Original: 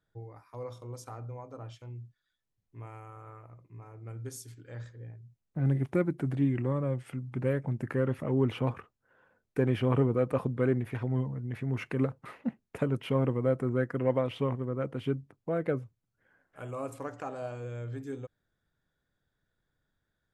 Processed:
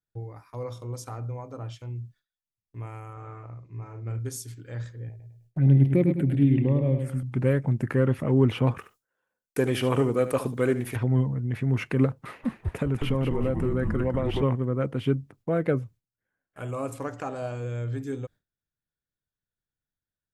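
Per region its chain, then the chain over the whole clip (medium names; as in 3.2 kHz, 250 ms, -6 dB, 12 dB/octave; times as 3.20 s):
3.13–4.19 s: low-pass 7 kHz 24 dB/octave + doubling 43 ms -5.5 dB
5.09–7.23 s: touch-sensitive phaser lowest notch 170 Hz, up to 1.4 kHz, full sweep at -26.5 dBFS + feedback delay 103 ms, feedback 35%, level -6.5 dB
8.78–10.96 s: tone controls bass -9 dB, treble +13 dB + delay 73 ms -12.5 dB
12.22–14.43 s: frequency-shifting echo 196 ms, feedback 42%, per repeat -150 Hz, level -4.5 dB + compression 2.5:1, threshold -29 dBFS
whole clip: bass shelf 380 Hz +7 dB; gate with hold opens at -49 dBFS; tilt shelf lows -3 dB, about 1.4 kHz; trim +4.5 dB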